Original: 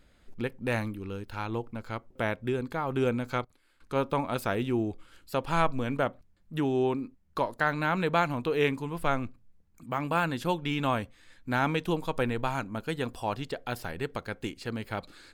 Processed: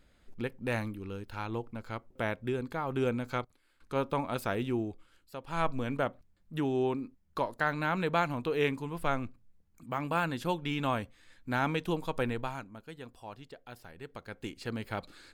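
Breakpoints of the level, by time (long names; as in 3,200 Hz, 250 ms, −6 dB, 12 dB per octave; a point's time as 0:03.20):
0:04.72 −3 dB
0:05.41 −13.5 dB
0:05.67 −3 dB
0:12.33 −3 dB
0:12.80 −14 dB
0:13.93 −14 dB
0:14.63 −2 dB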